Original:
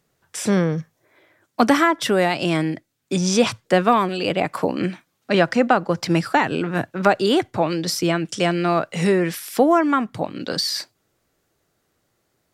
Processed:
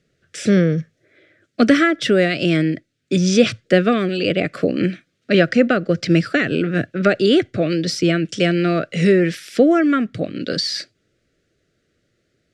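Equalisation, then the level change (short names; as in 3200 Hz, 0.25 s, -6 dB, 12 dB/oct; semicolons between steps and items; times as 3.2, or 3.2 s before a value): Butterworth band-stop 920 Hz, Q 1.1; air absorption 92 m; +4.5 dB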